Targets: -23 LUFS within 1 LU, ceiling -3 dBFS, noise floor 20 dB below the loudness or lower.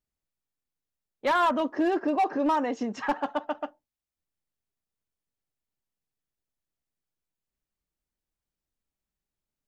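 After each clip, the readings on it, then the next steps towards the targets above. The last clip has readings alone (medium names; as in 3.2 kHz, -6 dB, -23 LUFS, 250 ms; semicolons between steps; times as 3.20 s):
clipped samples 0.6%; clipping level -19.0 dBFS; loudness -27.5 LUFS; peak level -19.0 dBFS; loudness target -23.0 LUFS
-> clip repair -19 dBFS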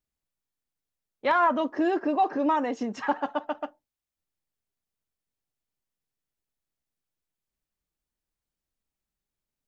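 clipped samples 0.0%; loudness -26.5 LUFS; peak level -11.5 dBFS; loudness target -23.0 LUFS
-> trim +3.5 dB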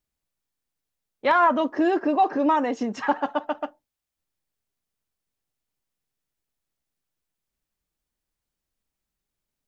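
loudness -23.0 LUFS; peak level -8.0 dBFS; noise floor -86 dBFS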